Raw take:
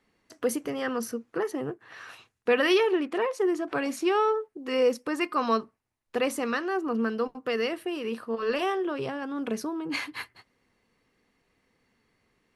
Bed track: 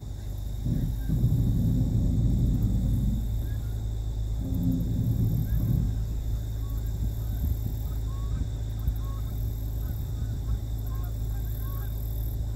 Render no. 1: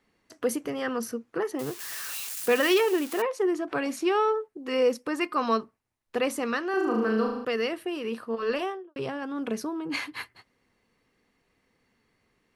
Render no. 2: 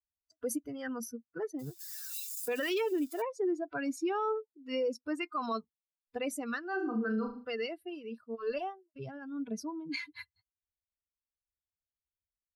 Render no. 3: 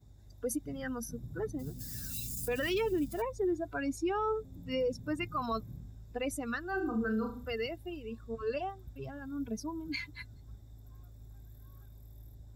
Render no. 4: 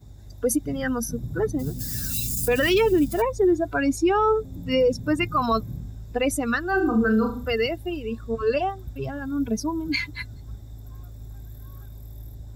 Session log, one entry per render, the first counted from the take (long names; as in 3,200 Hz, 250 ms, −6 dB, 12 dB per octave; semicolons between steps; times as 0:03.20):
0:01.59–0:03.22: spike at every zero crossing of −26 dBFS; 0:06.70–0:07.45: flutter between parallel walls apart 6.3 metres, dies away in 0.76 s; 0:08.50–0:08.96: fade out and dull
spectral dynamics exaggerated over time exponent 2; brickwall limiter −25.5 dBFS, peak gain reduction 10 dB
mix in bed track −21 dB
level +12 dB